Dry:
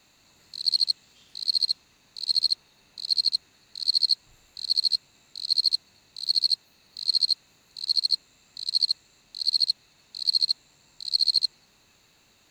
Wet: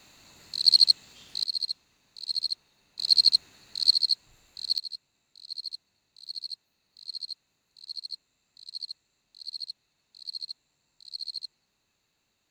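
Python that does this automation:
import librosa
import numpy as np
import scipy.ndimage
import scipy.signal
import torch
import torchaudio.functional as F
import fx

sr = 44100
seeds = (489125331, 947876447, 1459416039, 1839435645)

y = fx.gain(x, sr, db=fx.steps((0.0, 5.0), (1.44, -6.5), (2.99, 4.0), (3.94, -2.5), (4.78, -14.5)))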